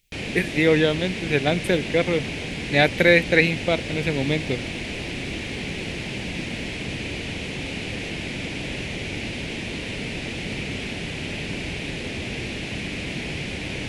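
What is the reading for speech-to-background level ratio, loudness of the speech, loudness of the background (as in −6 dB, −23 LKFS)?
8.0 dB, −21.5 LKFS, −29.5 LKFS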